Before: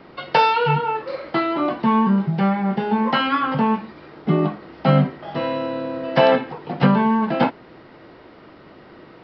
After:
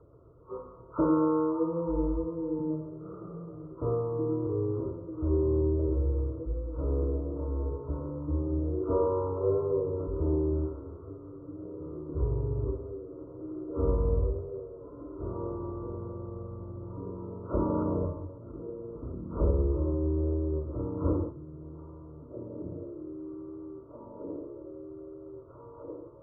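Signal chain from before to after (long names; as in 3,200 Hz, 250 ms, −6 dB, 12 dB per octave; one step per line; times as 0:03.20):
hearing-aid frequency compression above 2,300 Hz 1.5 to 1
low-shelf EQ 220 Hz −7.5 dB
phaser with its sweep stopped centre 2,200 Hz, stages 6
echo through a band-pass that steps 563 ms, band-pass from 470 Hz, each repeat 0.7 octaves, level −4.5 dB
change of speed 0.352×
level −6 dB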